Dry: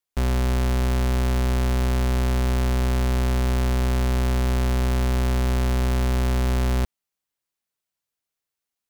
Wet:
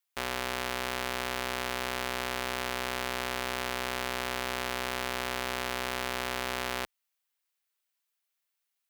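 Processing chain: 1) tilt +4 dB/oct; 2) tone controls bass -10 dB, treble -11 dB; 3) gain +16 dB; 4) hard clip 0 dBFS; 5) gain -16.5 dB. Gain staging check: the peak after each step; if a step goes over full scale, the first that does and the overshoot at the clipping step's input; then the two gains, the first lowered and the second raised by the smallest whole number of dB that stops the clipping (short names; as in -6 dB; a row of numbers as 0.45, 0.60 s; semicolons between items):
-2.5, -11.5, +4.5, 0.0, -16.5 dBFS; step 3, 4.5 dB; step 3 +11 dB, step 5 -11.5 dB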